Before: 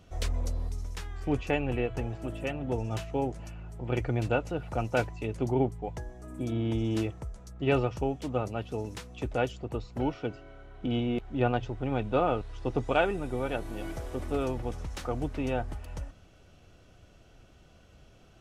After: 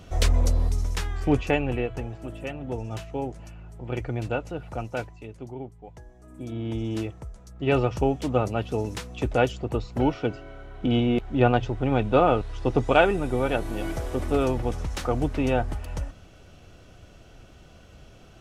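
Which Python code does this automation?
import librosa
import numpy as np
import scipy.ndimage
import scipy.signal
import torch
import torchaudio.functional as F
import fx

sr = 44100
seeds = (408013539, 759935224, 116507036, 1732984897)

y = fx.gain(x, sr, db=fx.line((1.02, 10.0), (2.11, -0.5), (4.71, -0.5), (5.61, -11.0), (6.77, 0.0), (7.48, 0.0), (7.99, 7.0)))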